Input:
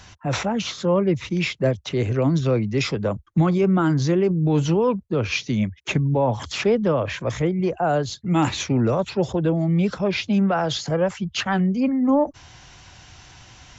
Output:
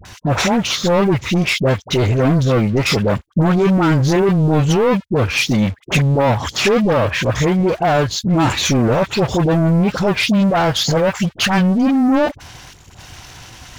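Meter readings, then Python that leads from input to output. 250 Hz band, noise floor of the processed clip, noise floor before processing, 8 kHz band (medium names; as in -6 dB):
+5.5 dB, -44 dBFS, -50 dBFS, no reading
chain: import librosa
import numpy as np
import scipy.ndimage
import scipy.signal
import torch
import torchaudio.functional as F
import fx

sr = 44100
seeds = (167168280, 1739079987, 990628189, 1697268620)

y = fx.spec_box(x, sr, start_s=12.68, length_s=0.26, low_hz=470.0, high_hz=6500.0, gain_db=-9)
y = fx.leveller(y, sr, passes=3)
y = fx.dispersion(y, sr, late='highs', ms=53.0, hz=940.0)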